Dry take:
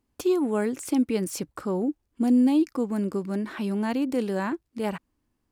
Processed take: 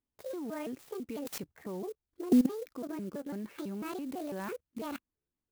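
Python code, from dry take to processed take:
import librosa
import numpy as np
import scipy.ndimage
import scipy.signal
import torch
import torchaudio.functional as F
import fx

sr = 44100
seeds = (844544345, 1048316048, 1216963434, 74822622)

y = fx.pitch_trill(x, sr, semitones=6.5, every_ms=166)
y = fx.level_steps(y, sr, step_db=18)
y = fx.clock_jitter(y, sr, seeds[0], jitter_ms=0.033)
y = F.gain(torch.from_numpy(y), -2.0).numpy()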